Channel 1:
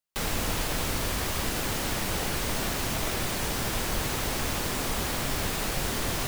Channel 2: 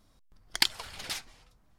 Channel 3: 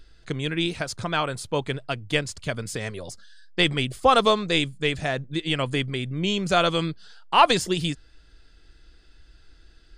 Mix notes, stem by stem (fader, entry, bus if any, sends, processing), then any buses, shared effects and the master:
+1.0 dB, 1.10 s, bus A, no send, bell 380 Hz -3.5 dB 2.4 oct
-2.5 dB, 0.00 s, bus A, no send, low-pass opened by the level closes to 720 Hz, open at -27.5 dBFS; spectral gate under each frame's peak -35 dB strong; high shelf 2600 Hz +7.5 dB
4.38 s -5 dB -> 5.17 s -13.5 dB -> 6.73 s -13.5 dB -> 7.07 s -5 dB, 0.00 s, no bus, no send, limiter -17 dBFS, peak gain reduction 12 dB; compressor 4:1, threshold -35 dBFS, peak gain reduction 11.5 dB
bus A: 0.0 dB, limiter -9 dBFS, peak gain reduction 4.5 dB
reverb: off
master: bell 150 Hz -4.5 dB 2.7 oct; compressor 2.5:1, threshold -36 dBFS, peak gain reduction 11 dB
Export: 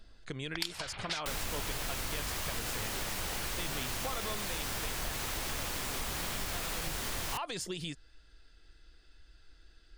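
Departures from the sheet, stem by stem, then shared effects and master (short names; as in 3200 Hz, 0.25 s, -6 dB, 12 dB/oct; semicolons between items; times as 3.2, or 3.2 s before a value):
stem 2 -2.5 dB -> +4.0 dB; stem 3: missing compressor 4:1, threshold -35 dBFS, peak gain reduction 11.5 dB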